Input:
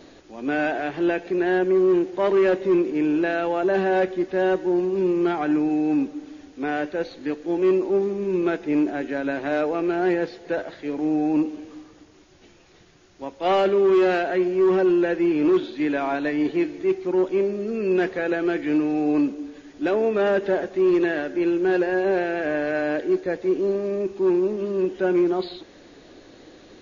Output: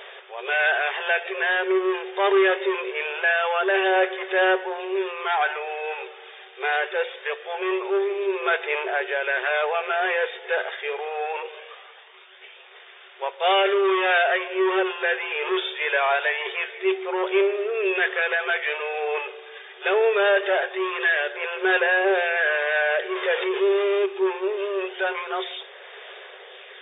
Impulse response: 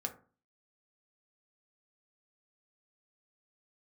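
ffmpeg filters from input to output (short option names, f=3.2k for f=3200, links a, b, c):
-filter_complex "[0:a]asettb=1/sr,asplit=3[a][b][c];[a]atrim=end=23.154[d];[b]atrim=start=23.15:end=24.06,asetpts=PTS-STARTPTS,afade=t=in:d=0.004:c=qsin,afade=t=out:st=0.906:d=0.004:c=qsin,aeval=exprs='val(0)+0.5*0.0376*sgn(val(0))':c=same[e];[c]atrim=start=24.056[f];[d][e]acrossfade=d=0.004:c1=hsin:c2=qsin[g];[g][f]acrossfade=d=0.004:c1=qsin:c2=hsin,tiltshelf=f=800:g=-9.5,asoftclip=type=tanh:threshold=-21dB,aphaser=in_gain=1:out_gain=1:delay=2.5:decay=0.28:speed=0.23:type=sinusoidal,afftfilt=real='re*between(b*sr/4096,370,3700)':imag='im*between(b*sr/4096,370,3700)':win_size=4096:overlap=0.75,volume=6dB"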